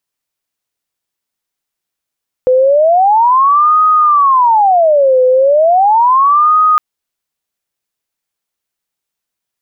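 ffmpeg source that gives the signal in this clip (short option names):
-f lavfi -i "aevalsrc='0.531*sin(2*PI*(879*t-371/(2*PI*0.36)*sin(2*PI*0.36*t)))':d=4.31:s=44100"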